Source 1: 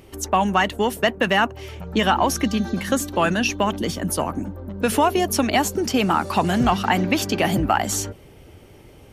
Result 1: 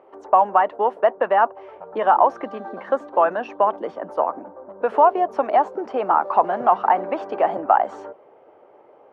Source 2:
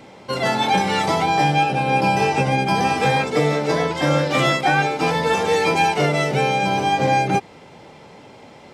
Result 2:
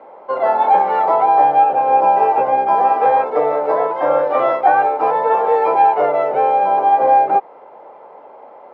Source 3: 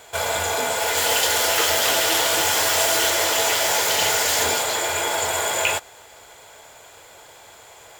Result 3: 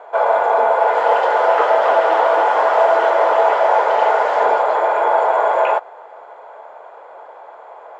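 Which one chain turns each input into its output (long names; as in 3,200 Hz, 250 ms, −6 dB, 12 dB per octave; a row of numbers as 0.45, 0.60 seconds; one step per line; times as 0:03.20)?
flat-topped band-pass 760 Hz, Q 1.1
normalise the peak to −2 dBFS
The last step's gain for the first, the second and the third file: +5.0, +7.5, +12.0 decibels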